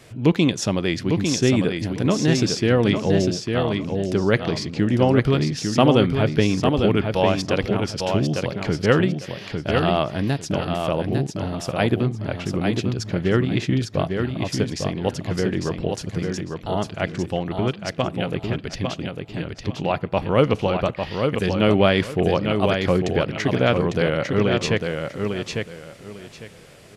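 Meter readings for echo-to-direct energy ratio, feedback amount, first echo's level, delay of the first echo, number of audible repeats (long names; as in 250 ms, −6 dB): −5.0 dB, 23%, −5.0 dB, 851 ms, 3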